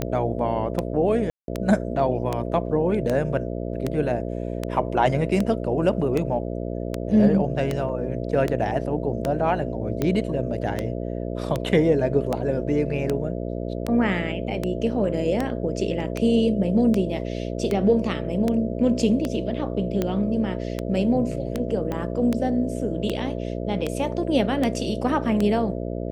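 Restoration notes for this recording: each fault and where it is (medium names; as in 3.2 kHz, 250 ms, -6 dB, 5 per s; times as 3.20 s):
buzz 60 Hz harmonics 11 -29 dBFS
tick 78 rpm -11 dBFS
1.30–1.48 s: dropout 182 ms
7.89 s: dropout 2.5 ms
21.92 s: pop -16 dBFS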